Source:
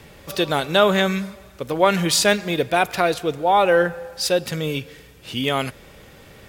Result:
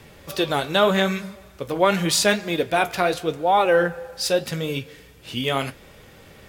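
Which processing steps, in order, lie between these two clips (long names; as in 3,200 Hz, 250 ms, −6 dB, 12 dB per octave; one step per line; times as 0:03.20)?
flanger 0.83 Hz, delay 7.5 ms, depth 9.5 ms, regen −56%
level +2.5 dB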